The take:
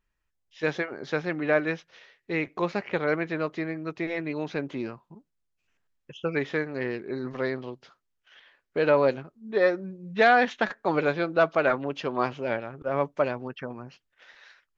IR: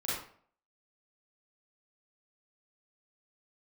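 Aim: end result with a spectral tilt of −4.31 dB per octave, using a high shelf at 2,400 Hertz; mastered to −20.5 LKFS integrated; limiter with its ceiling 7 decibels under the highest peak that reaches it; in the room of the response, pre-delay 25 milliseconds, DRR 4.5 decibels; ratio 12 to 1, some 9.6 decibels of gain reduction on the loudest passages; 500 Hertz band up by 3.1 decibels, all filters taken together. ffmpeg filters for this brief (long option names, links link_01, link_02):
-filter_complex "[0:a]equalizer=frequency=500:width_type=o:gain=3.5,highshelf=frequency=2400:gain=4.5,acompressor=threshold=-22dB:ratio=12,alimiter=limit=-18.5dB:level=0:latency=1,asplit=2[link_01][link_02];[1:a]atrim=start_sample=2205,adelay=25[link_03];[link_02][link_03]afir=irnorm=-1:irlink=0,volume=-9.5dB[link_04];[link_01][link_04]amix=inputs=2:normalize=0,volume=9.5dB"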